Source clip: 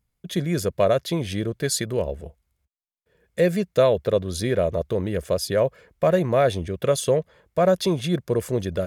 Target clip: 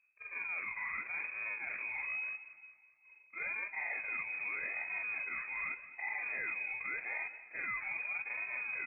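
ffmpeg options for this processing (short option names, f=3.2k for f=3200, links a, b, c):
-filter_complex "[0:a]afftfilt=real='re':imag='-im':win_size=4096:overlap=0.75,acrossover=split=500|1700[a][b][c];[a]acontrast=50[d];[d][b][c]amix=inputs=3:normalize=0,asplit=2[e][f];[f]adelay=18,volume=-5.5dB[g];[e][g]amix=inputs=2:normalize=0,asubboost=boost=11:cutoff=61,asoftclip=type=tanh:threshold=-17dB,adynamicequalizer=threshold=0.00708:dfrequency=1100:dqfactor=2.2:tfrequency=1100:tqfactor=2.2:attack=5:release=100:ratio=0.375:range=2:mode=cutabove:tftype=bell,acrusher=samples=29:mix=1:aa=0.000001:lfo=1:lforange=17.4:lforate=0.85,areverse,acompressor=threshold=-41dB:ratio=4,areverse,lowpass=f=2.2k:t=q:w=0.5098,lowpass=f=2.2k:t=q:w=0.6013,lowpass=f=2.2k:t=q:w=0.9,lowpass=f=2.2k:t=q:w=2.563,afreqshift=-2600,aecho=1:1:205|410|615|820|1025:0.158|0.0824|0.0429|0.0223|0.0116"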